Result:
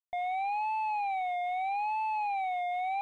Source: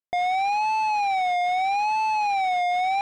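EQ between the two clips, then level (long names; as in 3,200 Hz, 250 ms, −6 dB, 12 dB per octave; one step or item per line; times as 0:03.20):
parametric band 170 Hz −11 dB 1.5 octaves
high-shelf EQ 3,500 Hz −8.5 dB
phaser with its sweep stopped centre 1,500 Hz, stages 6
−7.0 dB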